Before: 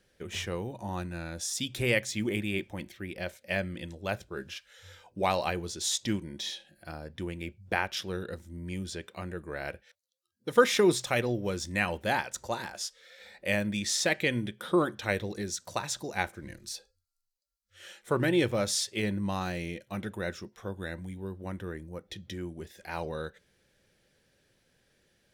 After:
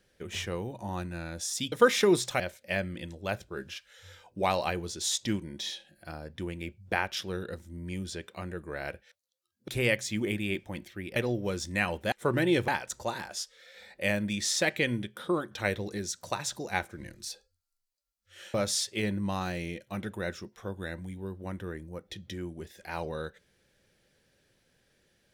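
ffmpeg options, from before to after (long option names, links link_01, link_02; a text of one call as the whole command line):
ffmpeg -i in.wav -filter_complex "[0:a]asplit=9[link_01][link_02][link_03][link_04][link_05][link_06][link_07][link_08][link_09];[link_01]atrim=end=1.722[link_10];[link_02]atrim=start=10.478:end=11.162[link_11];[link_03]atrim=start=3.198:end=10.482[link_12];[link_04]atrim=start=1.718:end=3.202[link_13];[link_05]atrim=start=11.158:end=12.122[link_14];[link_06]atrim=start=17.978:end=18.542[link_15];[link_07]atrim=start=12.118:end=14.95,asetpts=PTS-STARTPTS,afade=type=out:start_time=2.272:duration=0.56:silence=0.473151[link_16];[link_08]atrim=start=14.95:end=17.982,asetpts=PTS-STARTPTS,afade=type=in:duration=0.004:curve=hsin:silence=0.473151[link_17];[link_09]atrim=start=18.538[link_18];[link_10][link_11]acrossfade=duration=0.004:curve1=hsin:curve2=hsin[link_19];[link_19][link_12]acrossfade=duration=0.004:curve1=hsin:curve2=hsin[link_20];[link_20][link_13]acrossfade=duration=0.004:curve1=hsin:curve2=hsin[link_21];[link_21][link_14]acrossfade=duration=0.004:curve1=hsin:curve2=hsin[link_22];[link_22][link_15]acrossfade=duration=0.004:curve1=hsin:curve2=hsin[link_23];[link_16][link_17]concat=n=2:v=0:a=1[link_24];[link_23][link_24]acrossfade=duration=0.004:curve1=hsin:curve2=hsin[link_25];[link_25][link_18]acrossfade=duration=0.004:curve1=hsin:curve2=hsin" out.wav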